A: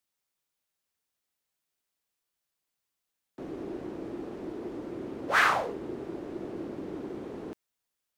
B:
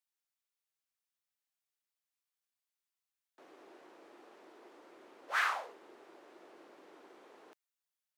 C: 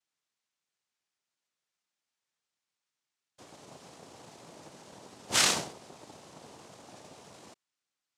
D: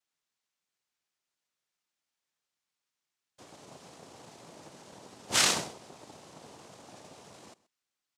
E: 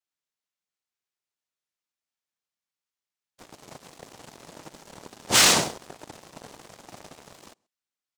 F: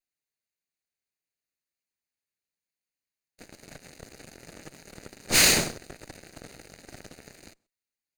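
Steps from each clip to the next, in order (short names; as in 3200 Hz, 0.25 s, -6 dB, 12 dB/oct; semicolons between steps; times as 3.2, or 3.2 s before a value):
HPF 790 Hz 12 dB/oct; gain -8 dB
noise vocoder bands 2; gain +6.5 dB
echo 0.129 s -20.5 dB
sample leveller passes 3
minimum comb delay 0.45 ms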